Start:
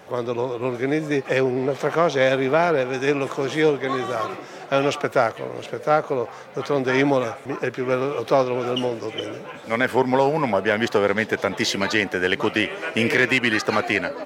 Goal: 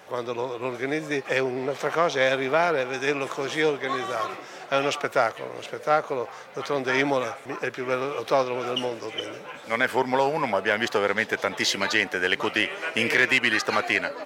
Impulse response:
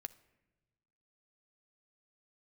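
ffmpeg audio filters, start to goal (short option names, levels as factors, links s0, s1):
-af "lowshelf=f=480:g=-9.5"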